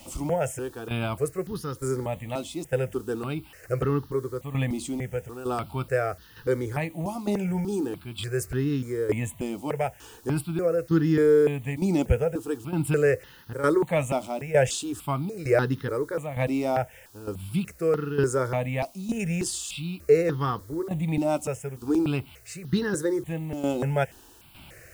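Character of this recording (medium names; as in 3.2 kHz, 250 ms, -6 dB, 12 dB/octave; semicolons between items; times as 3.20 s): tremolo saw down 1.1 Hz, depth 70%; a quantiser's noise floor 10-bit, dither triangular; notches that jump at a steady rate 3.4 Hz 450–2300 Hz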